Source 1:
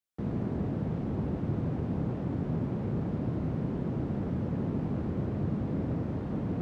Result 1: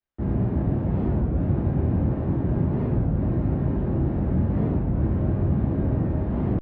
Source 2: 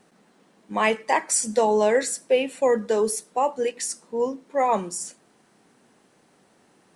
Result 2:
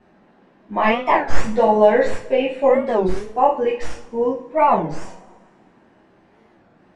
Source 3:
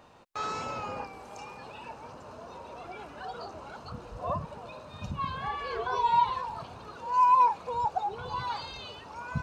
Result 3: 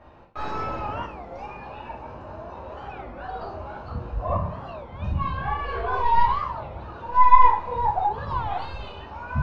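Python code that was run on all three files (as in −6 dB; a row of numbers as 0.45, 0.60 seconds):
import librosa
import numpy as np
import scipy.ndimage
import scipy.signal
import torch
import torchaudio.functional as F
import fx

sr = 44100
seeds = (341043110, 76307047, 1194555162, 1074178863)

y = fx.tracing_dist(x, sr, depth_ms=0.061)
y = scipy.signal.sosfilt(scipy.signal.butter(2, 2500.0, 'lowpass', fs=sr, output='sos'), y)
y = fx.low_shelf(y, sr, hz=140.0, db=10.0)
y = fx.rev_double_slope(y, sr, seeds[0], early_s=0.39, late_s=1.7, knee_db=-21, drr_db=-6.5)
y = fx.record_warp(y, sr, rpm=33.33, depth_cents=250.0)
y = y * librosa.db_to_amplitude(-2.0)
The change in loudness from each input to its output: +8.5, +5.0, +5.5 LU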